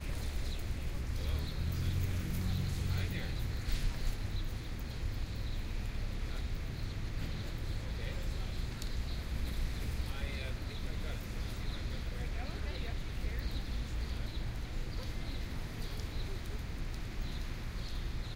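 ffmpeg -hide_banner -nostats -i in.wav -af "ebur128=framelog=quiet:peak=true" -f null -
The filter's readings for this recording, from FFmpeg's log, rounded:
Integrated loudness:
  I:         -40.0 LUFS
  Threshold: -50.0 LUFS
Loudness range:
  LRA:         4.5 LU
  Threshold: -60.0 LUFS
  LRA low:   -41.7 LUFS
  LRA high:  -37.2 LUFS
True peak:
  Peak:      -20.6 dBFS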